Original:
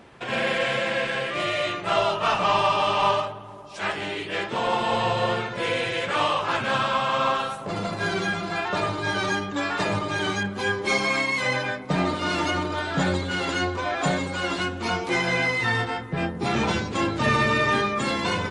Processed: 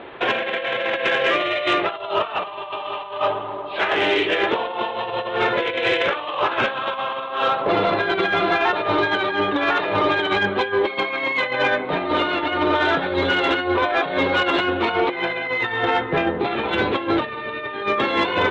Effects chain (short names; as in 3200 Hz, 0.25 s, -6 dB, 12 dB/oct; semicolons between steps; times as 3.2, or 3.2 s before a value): steep low-pass 3900 Hz 72 dB/oct; resonant low shelf 260 Hz -9.5 dB, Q 1.5; negative-ratio compressor -28 dBFS, ratio -0.5; soft clip -16.5 dBFS, distortion -23 dB; gain +8 dB